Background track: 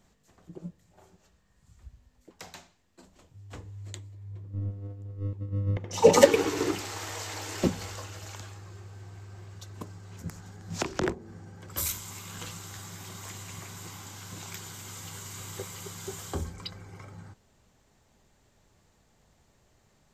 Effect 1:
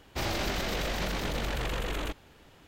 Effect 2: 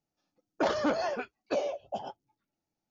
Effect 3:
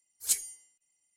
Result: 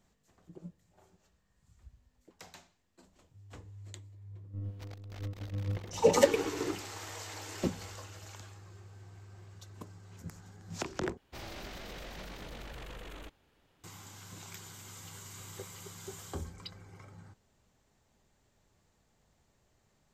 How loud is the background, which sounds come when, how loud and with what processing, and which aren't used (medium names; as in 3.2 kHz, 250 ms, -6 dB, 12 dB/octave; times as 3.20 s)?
background track -6.5 dB
4.64 s: add 1 -15 dB + transformer saturation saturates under 360 Hz
11.17 s: replace with 1 -13.5 dB
not used: 2, 3